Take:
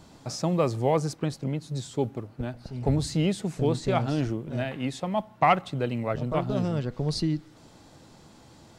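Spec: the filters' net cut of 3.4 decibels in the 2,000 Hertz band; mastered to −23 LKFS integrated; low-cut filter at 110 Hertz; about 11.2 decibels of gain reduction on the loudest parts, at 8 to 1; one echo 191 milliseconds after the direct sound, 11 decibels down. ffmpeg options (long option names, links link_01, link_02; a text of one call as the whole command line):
ffmpeg -i in.wav -af "highpass=110,equalizer=frequency=2000:width_type=o:gain=-4,acompressor=threshold=-28dB:ratio=8,aecho=1:1:191:0.282,volume=11dB" out.wav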